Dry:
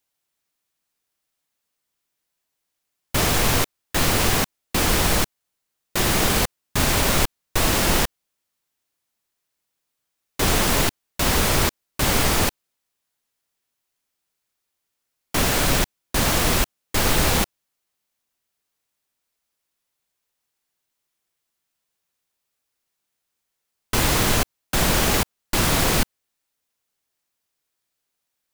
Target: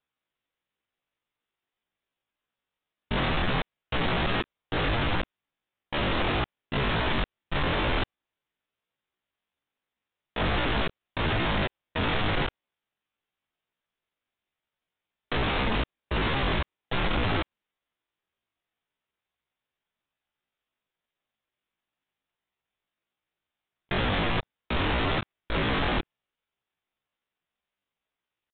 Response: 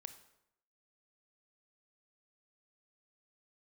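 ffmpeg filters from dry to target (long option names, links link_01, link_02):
-af "asetrate=72056,aresample=44100,atempo=0.612027,aresample=8000,asoftclip=type=tanh:threshold=-22dB,aresample=44100"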